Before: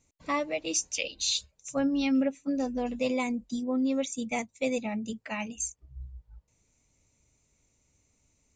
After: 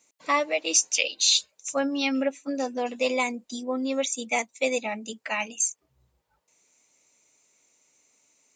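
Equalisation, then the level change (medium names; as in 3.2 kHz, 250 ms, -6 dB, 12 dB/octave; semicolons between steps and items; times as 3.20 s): high-pass 270 Hz 12 dB/octave; bass shelf 350 Hz -11 dB; +8.0 dB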